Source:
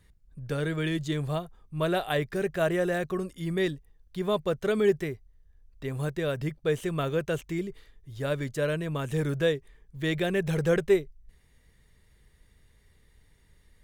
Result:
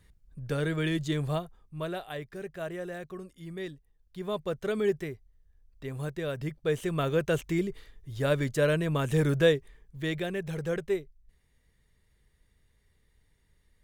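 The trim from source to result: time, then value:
1.35 s 0 dB
2.08 s -10.5 dB
3.70 s -10.5 dB
4.55 s -4 dB
6.28 s -4 dB
7.46 s +3 dB
9.54 s +3 dB
10.43 s -7 dB

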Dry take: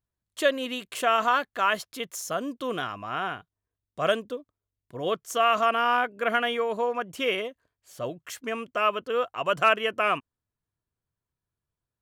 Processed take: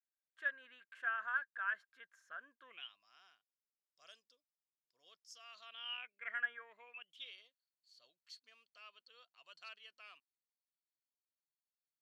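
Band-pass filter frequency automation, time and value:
band-pass filter, Q 19
2.63 s 1.6 kHz
3.04 s 5.1 kHz
5.42 s 5.1 kHz
6.52 s 1.5 kHz
7.36 s 4.4 kHz

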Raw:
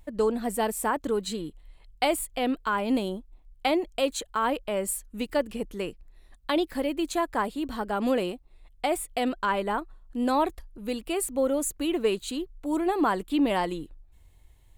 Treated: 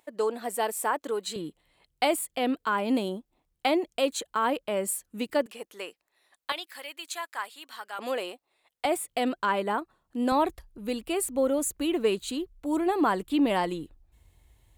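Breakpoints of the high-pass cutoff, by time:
420 Hz
from 1.36 s 150 Hz
from 5.46 s 640 Hz
from 6.52 s 1.4 kHz
from 7.99 s 580 Hz
from 8.85 s 150 Hz
from 10.32 s 45 Hz

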